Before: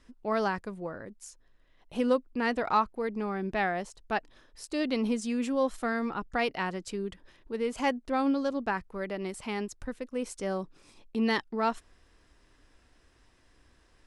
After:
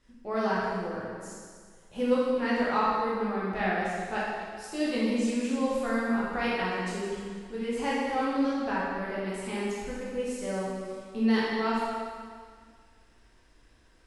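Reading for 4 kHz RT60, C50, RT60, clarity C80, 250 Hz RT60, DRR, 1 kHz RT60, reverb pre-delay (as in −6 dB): 1.8 s, −2.5 dB, 1.9 s, 0.0 dB, 1.9 s, −8.0 dB, 1.9 s, 6 ms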